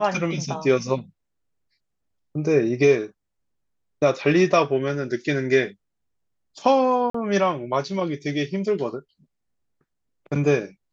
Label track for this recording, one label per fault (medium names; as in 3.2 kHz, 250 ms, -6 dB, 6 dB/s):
7.100000	7.140000	dropout 44 ms